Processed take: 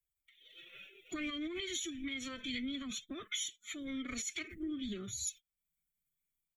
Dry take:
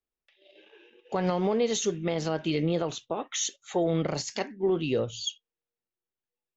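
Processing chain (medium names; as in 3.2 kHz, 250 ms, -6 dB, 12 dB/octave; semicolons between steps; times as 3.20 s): comb 0.9 ms, depth 80%; formant-preserving pitch shift +8.5 st; FFT filter 150 Hz 0 dB, 660 Hz -8 dB, 6.9 kHz +11 dB; flange 0.32 Hz, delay 0.4 ms, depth 3.2 ms, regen -50%; dynamic bell 2.8 kHz, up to +5 dB, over -44 dBFS, Q 1; level rider gain up to 8 dB; static phaser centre 2.1 kHz, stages 4; compression 3:1, threshold -42 dBFS, peak gain reduction 16.5 dB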